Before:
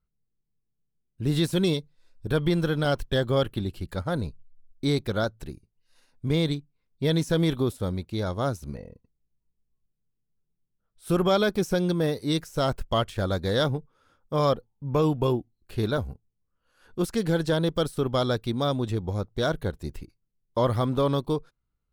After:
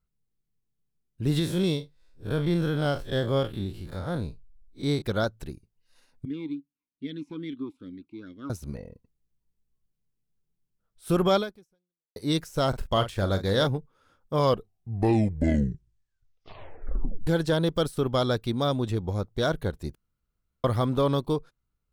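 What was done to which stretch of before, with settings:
1.39–5.02 s: spectral blur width 88 ms
6.25–8.50 s: talking filter i-u 2.4 Hz
11.37–12.16 s: fade out exponential
12.69–13.67 s: doubling 41 ms -10 dB
14.34 s: tape stop 2.93 s
19.95–20.64 s: room tone

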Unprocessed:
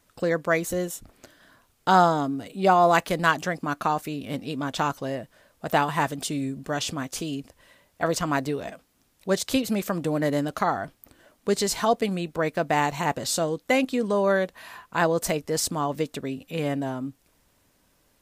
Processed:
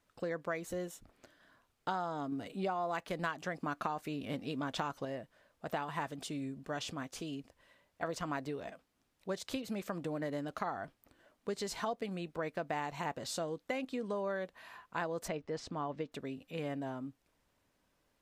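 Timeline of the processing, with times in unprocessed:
2.32–5.05 s: gain +5 dB
15.28–16.12 s: distance through air 140 m
whole clip: treble shelf 5.9 kHz -10.5 dB; compression 12:1, threshold -23 dBFS; bass shelf 330 Hz -3.5 dB; trim -8.5 dB

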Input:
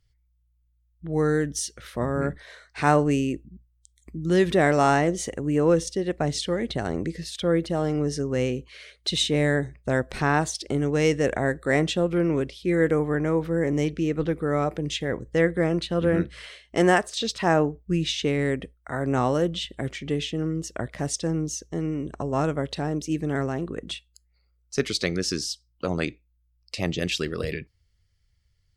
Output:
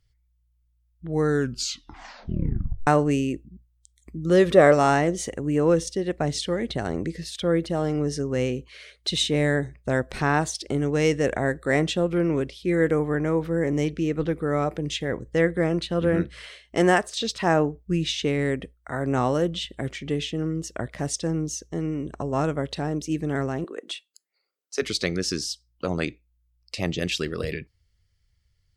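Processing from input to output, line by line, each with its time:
1.28 s: tape stop 1.59 s
4.23–4.73 s: small resonant body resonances 540/1200 Hz, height 9 dB -> 11 dB, ringing for 20 ms
23.64–24.82 s: high-pass 330 Hz 24 dB/octave

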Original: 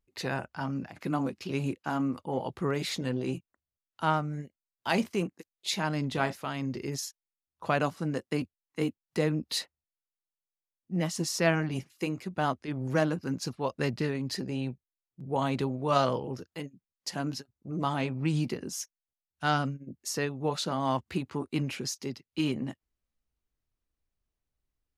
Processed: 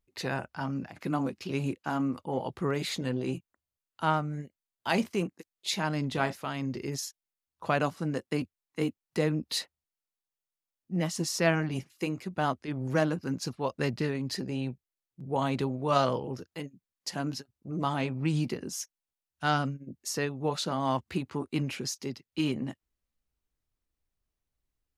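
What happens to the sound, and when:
2.80–4.95 s: band-stop 5.5 kHz

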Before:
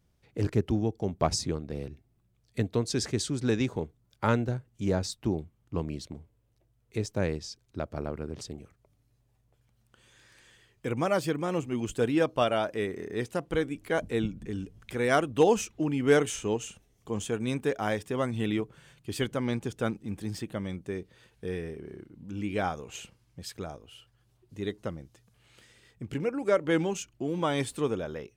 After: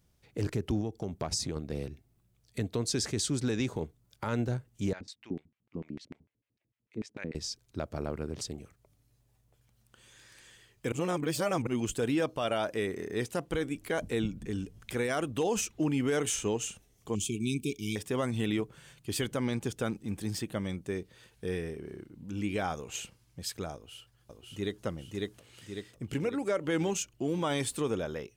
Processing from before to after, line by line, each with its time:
0.81–1.56 s: compression 3:1, threshold -31 dBFS
4.93–7.35 s: LFO band-pass square 6.7 Hz 240–2200 Hz
10.92–11.67 s: reverse
17.15–17.96 s: brick-wall FIR band-stop 420–2200 Hz
23.74–24.84 s: echo throw 550 ms, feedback 55%, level -2 dB
whole clip: treble shelf 4.1 kHz +6.5 dB; peak limiter -21 dBFS

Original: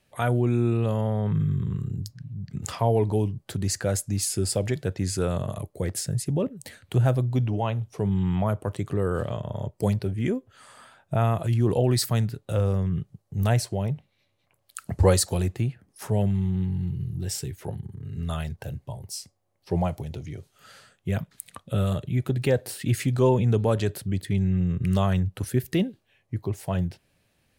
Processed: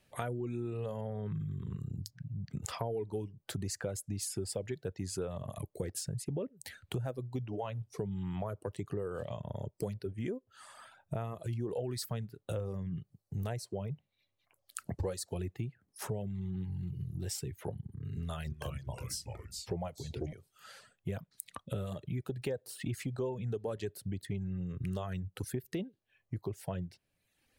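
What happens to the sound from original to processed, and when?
18.15–20.33 s: ever faster or slower copies 304 ms, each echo -2 st, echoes 3, each echo -6 dB
whole clip: reverb removal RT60 0.84 s; dynamic bell 440 Hz, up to +6 dB, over -40 dBFS, Q 1.8; compression 5:1, threshold -33 dBFS; trim -2 dB

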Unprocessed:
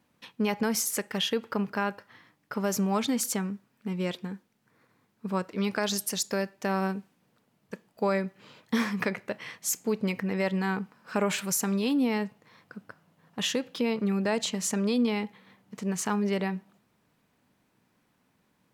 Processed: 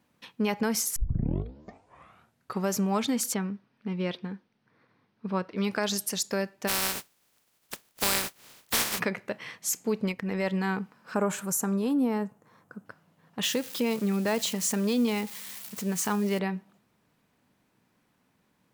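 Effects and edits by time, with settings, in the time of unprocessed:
0.96 s: tape start 1.75 s
3.34–5.57 s: Savitzky-Golay filter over 15 samples
6.67–8.98 s: spectral contrast reduction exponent 0.18
10.05–10.48 s: transient shaper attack -5 dB, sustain -10 dB
11.14–12.86 s: high-order bell 3.2 kHz -10.5 dB
13.43–16.39 s: zero-crossing glitches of -30 dBFS

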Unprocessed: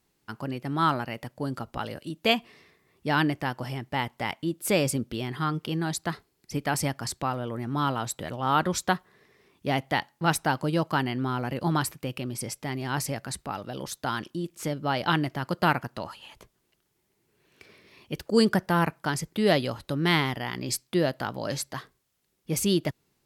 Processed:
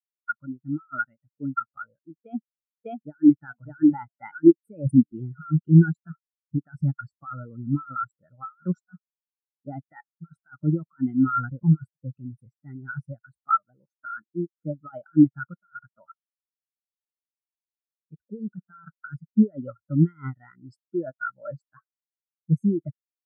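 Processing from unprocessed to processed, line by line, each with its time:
2.21–3.39 s: echo throw 600 ms, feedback 25%, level -3.5 dB
4.65–7.82 s: bass shelf 470 Hz +2 dB
11.27–12.51 s: bass shelf 70 Hz +7.5 dB
whole clip: peaking EQ 1.4 kHz +14.5 dB 0.47 oct; compressor with a negative ratio -25 dBFS, ratio -1; spectral contrast expander 4:1; trim +3 dB

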